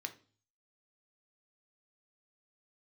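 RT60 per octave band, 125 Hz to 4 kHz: 0.75, 0.50, 0.45, 0.40, 0.35, 0.45 s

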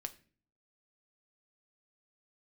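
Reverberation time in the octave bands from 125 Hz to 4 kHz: 0.75, 0.70, 0.50, 0.35, 0.40, 0.35 s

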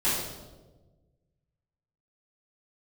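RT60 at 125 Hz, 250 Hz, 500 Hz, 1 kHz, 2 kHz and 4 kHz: 2.0, 1.6, 1.5, 1.1, 0.80, 0.85 s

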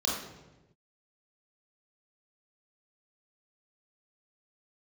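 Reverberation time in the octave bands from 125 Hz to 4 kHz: 1.3, 1.3, 1.2, 0.95, 0.90, 0.75 s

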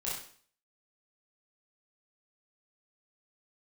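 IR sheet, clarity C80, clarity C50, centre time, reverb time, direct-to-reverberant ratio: 6.5 dB, 1.5 dB, 51 ms, 0.50 s, -7.5 dB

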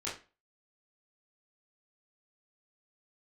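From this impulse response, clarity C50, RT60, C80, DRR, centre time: 7.5 dB, 0.30 s, 13.5 dB, -8.5 dB, 33 ms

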